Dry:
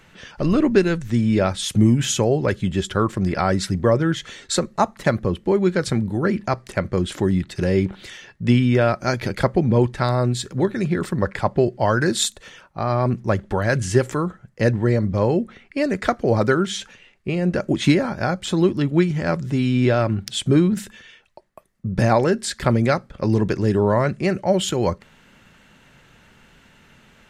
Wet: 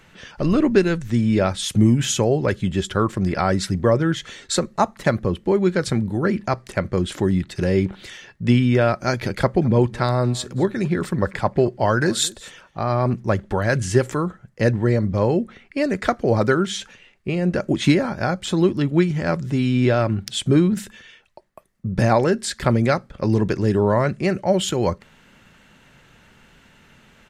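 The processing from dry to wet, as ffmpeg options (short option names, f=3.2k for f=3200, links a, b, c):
-filter_complex "[0:a]asplit=3[a][b][c];[a]afade=t=out:st=9.61:d=0.02[d];[b]aecho=1:1:215:0.0841,afade=t=in:st=9.61:d=0.02,afade=t=out:st=13.13:d=0.02[e];[c]afade=t=in:st=13.13:d=0.02[f];[d][e][f]amix=inputs=3:normalize=0"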